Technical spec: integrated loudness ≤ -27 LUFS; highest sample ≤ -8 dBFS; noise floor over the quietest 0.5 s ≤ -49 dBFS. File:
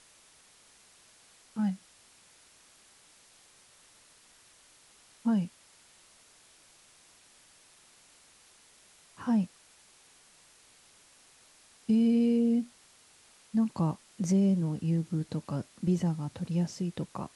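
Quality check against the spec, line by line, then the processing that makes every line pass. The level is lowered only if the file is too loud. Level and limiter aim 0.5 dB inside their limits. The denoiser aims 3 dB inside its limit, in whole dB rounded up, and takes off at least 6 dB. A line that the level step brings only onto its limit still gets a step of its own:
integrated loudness -30.5 LUFS: OK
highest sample -18.0 dBFS: OK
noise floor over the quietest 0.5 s -60 dBFS: OK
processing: none

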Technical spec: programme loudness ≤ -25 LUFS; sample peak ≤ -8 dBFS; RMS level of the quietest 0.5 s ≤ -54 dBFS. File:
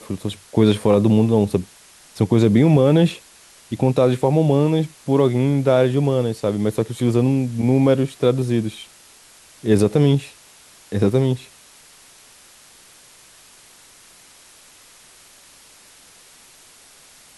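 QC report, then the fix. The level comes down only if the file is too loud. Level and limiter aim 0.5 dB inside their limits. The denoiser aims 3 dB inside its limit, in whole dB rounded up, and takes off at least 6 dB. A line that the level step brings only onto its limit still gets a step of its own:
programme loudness -18.5 LUFS: fail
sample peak -5.0 dBFS: fail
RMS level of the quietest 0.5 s -48 dBFS: fail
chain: gain -7 dB

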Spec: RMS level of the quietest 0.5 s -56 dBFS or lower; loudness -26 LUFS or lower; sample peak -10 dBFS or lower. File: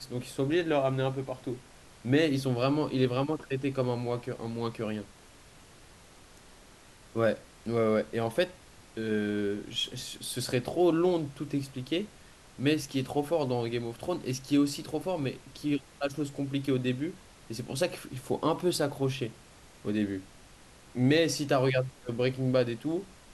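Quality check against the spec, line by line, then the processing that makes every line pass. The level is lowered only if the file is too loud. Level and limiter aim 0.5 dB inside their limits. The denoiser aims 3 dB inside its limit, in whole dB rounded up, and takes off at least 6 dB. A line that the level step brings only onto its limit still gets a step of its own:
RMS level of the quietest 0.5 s -54 dBFS: fail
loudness -30.5 LUFS: OK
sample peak -14.0 dBFS: OK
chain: denoiser 6 dB, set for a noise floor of -54 dBFS

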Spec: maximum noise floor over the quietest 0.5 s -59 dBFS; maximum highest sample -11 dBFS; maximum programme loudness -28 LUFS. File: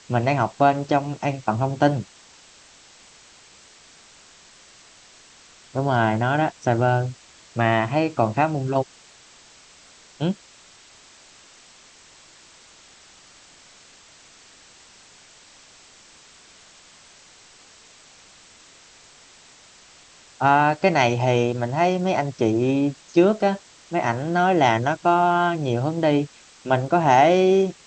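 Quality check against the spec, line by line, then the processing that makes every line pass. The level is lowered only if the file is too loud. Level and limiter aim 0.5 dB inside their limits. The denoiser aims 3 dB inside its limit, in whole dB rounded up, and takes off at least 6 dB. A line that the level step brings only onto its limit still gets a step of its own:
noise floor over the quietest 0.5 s -50 dBFS: fail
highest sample -4.0 dBFS: fail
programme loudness -21.0 LUFS: fail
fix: denoiser 6 dB, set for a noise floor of -50 dBFS; gain -7.5 dB

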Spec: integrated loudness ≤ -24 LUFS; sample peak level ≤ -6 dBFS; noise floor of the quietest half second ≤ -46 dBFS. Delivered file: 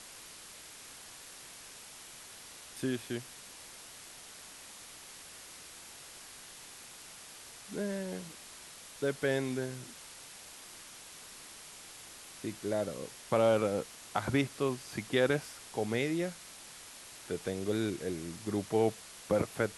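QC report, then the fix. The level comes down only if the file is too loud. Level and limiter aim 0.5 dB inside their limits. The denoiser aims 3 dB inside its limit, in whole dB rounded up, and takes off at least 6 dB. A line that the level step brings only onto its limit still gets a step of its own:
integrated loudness -34.0 LUFS: OK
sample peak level -14.5 dBFS: OK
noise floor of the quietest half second -51 dBFS: OK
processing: none

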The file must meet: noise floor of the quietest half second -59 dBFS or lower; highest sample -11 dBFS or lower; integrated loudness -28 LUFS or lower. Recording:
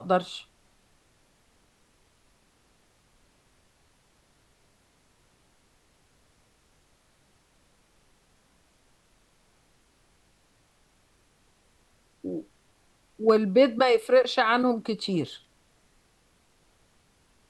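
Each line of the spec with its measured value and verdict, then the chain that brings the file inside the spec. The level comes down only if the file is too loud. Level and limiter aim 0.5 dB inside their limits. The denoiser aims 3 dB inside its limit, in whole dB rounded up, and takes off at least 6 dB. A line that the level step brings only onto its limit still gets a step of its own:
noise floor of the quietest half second -65 dBFS: OK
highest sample -8.5 dBFS: fail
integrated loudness -24.5 LUFS: fail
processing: gain -4 dB

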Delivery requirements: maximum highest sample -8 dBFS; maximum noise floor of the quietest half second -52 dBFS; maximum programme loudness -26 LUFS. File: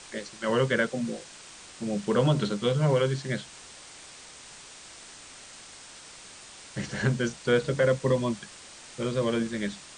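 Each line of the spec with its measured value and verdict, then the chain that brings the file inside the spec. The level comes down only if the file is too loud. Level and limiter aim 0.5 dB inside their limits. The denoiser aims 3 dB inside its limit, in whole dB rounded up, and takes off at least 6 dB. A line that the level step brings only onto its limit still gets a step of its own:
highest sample -12.5 dBFS: OK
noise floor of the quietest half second -47 dBFS: fail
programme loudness -27.5 LUFS: OK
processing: denoiser 8 dB, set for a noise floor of -47 dBFS

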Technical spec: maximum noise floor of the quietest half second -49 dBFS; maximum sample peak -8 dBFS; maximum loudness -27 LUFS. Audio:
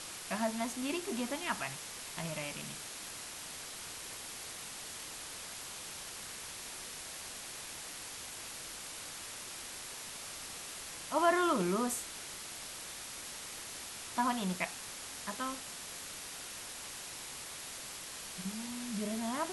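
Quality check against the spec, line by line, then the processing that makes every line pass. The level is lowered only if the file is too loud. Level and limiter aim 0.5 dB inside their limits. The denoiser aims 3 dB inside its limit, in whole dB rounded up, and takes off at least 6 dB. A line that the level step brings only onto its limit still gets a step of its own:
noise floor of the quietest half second -46 dBFS: fail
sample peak -14.5 dBFS: OK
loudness -38.5 LUFS: OK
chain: denoiser 6 dB, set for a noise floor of -46 dBFS

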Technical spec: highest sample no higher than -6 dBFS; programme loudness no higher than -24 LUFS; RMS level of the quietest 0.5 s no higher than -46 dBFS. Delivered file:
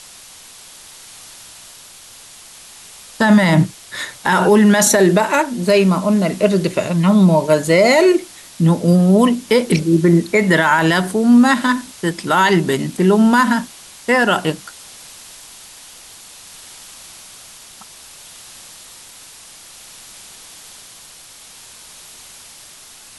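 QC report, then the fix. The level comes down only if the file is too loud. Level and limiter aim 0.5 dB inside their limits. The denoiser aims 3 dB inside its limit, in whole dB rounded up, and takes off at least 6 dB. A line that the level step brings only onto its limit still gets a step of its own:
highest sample -3.0 dBFS: fail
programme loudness -14.5 LUFS: fail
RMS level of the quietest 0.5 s -41 dBFS: fail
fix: gain -10 dB

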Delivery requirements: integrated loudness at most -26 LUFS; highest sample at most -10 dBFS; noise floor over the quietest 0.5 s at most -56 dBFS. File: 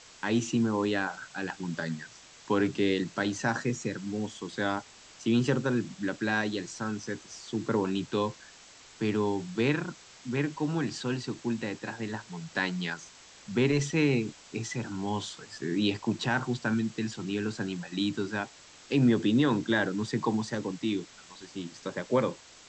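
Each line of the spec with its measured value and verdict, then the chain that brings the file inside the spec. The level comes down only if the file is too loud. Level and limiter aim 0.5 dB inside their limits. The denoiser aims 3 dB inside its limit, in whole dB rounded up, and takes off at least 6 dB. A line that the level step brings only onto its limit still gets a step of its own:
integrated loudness -30.5 LUFS: OK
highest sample -13.5 dBFS: OK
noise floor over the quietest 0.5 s -53 dBFS: fail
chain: denoiser 6 dB, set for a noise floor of -53 dBFS

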